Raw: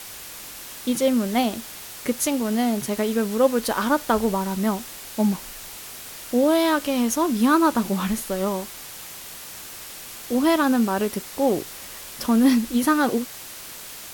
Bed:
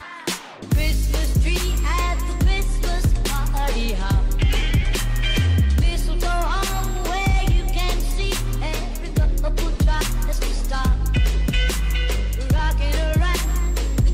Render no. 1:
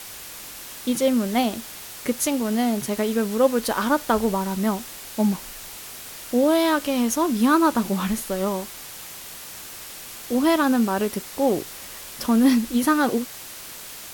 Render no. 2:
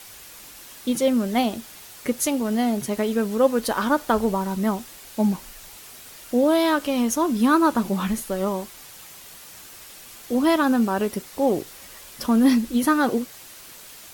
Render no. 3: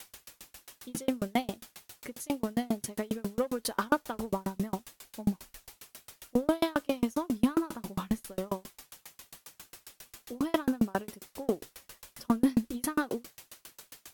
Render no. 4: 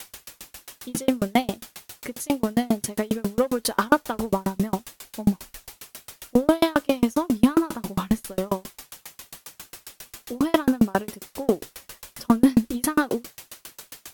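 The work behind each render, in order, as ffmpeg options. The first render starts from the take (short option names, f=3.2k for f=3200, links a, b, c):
-af anull
-af "afftdn=nr=6:nf=-39"
-af "asoftclip=type=tanh:threshold=-10dB,aeval=exprs='val(0)*pow(10,-36*if(lt(mod(7.4*n/s,1),2*abs(7.4)/1000),1-mod(7.4*n/s,1)/(2*abs(7.4)/1000),(mod(7.4*n/s,1)-2*abs(7.4)/1000)/(1-2*abs(7.4)/1000))/20)':c=same"
-af "volume=8.5dB"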